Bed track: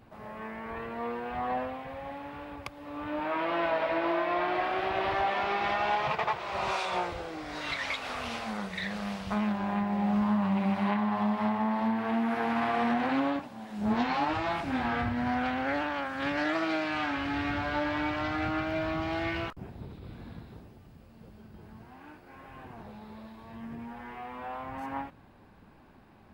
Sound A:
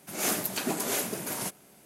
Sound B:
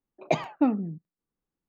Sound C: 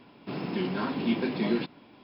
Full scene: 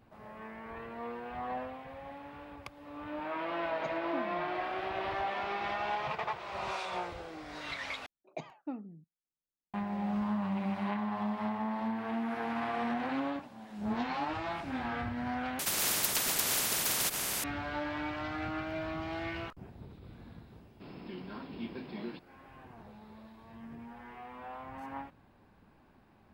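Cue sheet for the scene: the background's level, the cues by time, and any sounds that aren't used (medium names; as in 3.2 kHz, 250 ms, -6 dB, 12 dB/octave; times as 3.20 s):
bed track -6 dB
3.52 s: add B -18 dB
8.06 s: replace with B -17 dB
15.59 s: replace with A -1 dB + spectrum-flattening compressor 10:1
20.53 s: add C -14 dB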